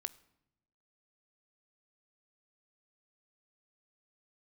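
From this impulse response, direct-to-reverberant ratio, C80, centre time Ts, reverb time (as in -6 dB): 14.5 dB, 22.5 dB, 2 ms, not exponential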